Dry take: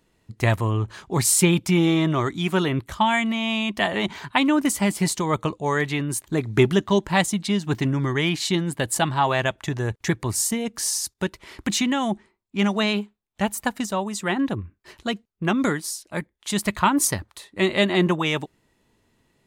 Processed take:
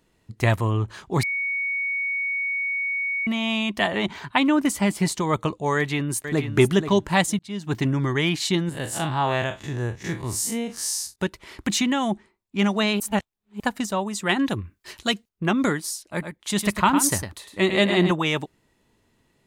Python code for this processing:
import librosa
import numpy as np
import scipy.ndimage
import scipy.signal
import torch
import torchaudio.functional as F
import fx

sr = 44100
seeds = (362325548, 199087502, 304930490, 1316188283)

y = fx.high_shelf(x, sr, hz=5800.0, db=-5.0, at=(3.87, 5.22))
y = fx.echo_throw(y, sr, start_s=5.76, length_s=0.78, ms=480, feedback_pct=15, wet_db=-9.0)
y = fx.spec_blur(y, sr, span_ms=88.0, at=(8.69, 11.16))
y = fx.high_shelf(y, sr, hz=2200.0, db=10.5, at=(14.29, 15.29))
y = fx.echo_single(y, sr, ms=105, db=-7.5, at=(16.1, 18.11))
y = fx.edit(y, sr, fx.bleep(start_s=1.23, length_s=2.04, hz=2230.0, db=-23.0),
    fx.fade_in_span(start_s=7.39, length_s=0.41),
    fx.reverse_span(start_s=13.0, length_s=0.6), tone=tone)